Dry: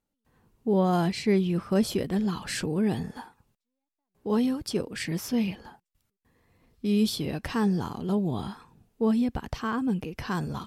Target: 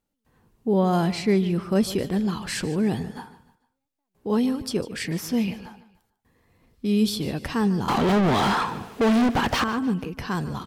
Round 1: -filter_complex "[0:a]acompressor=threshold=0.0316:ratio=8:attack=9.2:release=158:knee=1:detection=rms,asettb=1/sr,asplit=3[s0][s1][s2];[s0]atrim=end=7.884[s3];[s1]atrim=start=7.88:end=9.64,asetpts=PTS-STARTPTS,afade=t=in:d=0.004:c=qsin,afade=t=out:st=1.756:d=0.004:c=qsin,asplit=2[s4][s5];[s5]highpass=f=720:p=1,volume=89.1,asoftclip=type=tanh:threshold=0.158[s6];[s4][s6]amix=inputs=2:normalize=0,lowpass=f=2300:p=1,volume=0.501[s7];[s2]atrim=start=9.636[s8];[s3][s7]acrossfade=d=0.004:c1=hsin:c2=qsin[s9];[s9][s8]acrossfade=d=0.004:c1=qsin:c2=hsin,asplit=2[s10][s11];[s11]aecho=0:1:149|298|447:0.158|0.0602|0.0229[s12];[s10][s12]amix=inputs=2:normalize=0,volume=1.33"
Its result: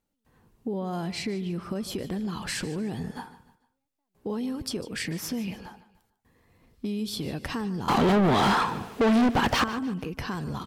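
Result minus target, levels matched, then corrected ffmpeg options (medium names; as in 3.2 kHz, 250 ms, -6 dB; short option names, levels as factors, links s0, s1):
compression: peak gain reduction +12.5 dB
-filter_complex "[0:a]asettb=1/sr,asplit=3[s0][s1][s2];[s0]atrim=end=7.884[s3];[s1]atrim=start=7.88:end=9.64,asetpts=PTS-STARTPTS,afade=t=in:d=0.004:c=qsin,afade=t=out:st=1.756:d=0.004:c=qsin,asplit=2[s4][s5];[s5]highpass=f=720:p=1,volume=89.1,asoftclip=type=tanh:threshold=0.158[s6];[s4][s6]amix=inputs=2:normalize=0,lowpass=f=2300:p=1,volume=0.501[s7];[s2]atrim=start=9.636[s8];[s3][s7]acrossfade=d=0.004:c1=hsin:c2=qsin[s9];[s9][s8]acrossfade=d=0.004:c1=qsin:c2=hsin,asplit=2[s10][s11];[s11]aecho=0:1:149|298|447:0.158|0.0602|0.0229[s12];[s10][s12]amix=inputs=2:normalize=0,volume=1.33"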